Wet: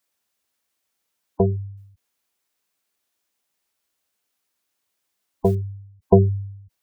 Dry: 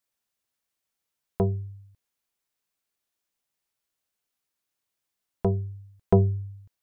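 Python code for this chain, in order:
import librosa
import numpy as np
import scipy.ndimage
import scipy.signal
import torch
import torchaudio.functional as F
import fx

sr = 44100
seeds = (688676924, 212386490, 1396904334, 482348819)

y = scipy.signal.sosfilt(scipy.signal.butter(2, 54.0, 'highpass', fs=sr, output='sos'), x)
y = fx.spec_gate(y, sr, threshold_db=-20, keep='strong')
y = fx.peak_eq(y, sr, hz=130.0, db=-13.5, octaves=0.36)
y = fx.mod_noise(y, sr, seeds[0], snr_db=33, at=(1.77, 5.55))
y = F.gain(torch.from_numpy(y), 7.0).numpy()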